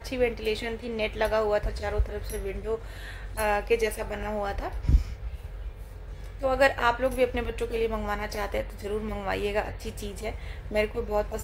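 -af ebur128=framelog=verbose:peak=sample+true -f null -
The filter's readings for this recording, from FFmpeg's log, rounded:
Integrated loudness:
  I:         -28.9 LUFS
  Threshold: -39.4 LUFS
Loudness range:
  LRA:         3.5 LU
  Threshold: -49.3 LUFS
  LRA low:   -31.2 LUFS
  LRA high:  -27.8 LUFS
Sample peak:
  Peak:       -9.0 dBFS
True peak:
  Peak:       -9.0 dBFS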